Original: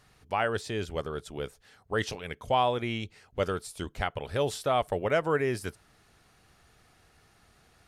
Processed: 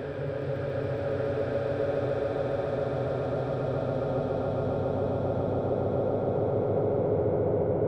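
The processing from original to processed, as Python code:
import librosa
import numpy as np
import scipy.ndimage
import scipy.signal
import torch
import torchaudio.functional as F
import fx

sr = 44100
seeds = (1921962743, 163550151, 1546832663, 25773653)

y = fx.env_lowpass_down(x, sr, base_hz=310.0, full_db=-23.5)
y = fx.paulstretch(y, sr, seeds[0], factor=11.0, window_s=1.0, from_s=4.43)
y = fx.echo_swell(y, sr, ms=140, loudest=5, wet_db=-6.0)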